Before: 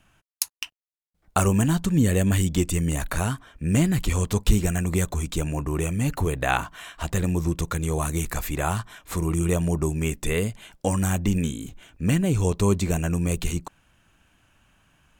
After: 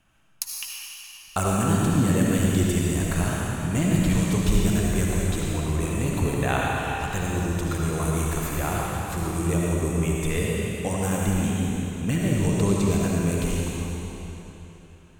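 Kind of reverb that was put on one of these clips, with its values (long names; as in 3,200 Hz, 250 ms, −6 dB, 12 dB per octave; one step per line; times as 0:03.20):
comb and all-pass reverb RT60 3.4 s, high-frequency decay 0.95×, pre-delay 35 ms, DRR −4 dB
level −4.5 dB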